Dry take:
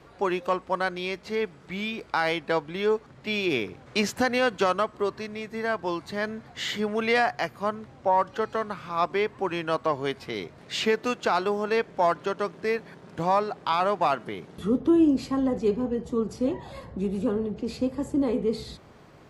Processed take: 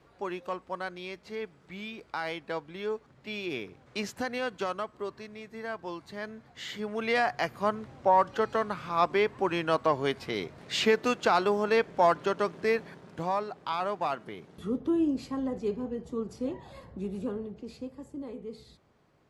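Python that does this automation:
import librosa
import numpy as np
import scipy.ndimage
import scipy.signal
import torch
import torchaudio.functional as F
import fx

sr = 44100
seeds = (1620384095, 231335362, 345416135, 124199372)

y = fx.gain(x, sr, db=fx.line((6.69, -9.0), (7.55, 0.0), (12.83, 0.0), (13.33, -7.0), (17.21, -7.0), (18.08, -15.0)))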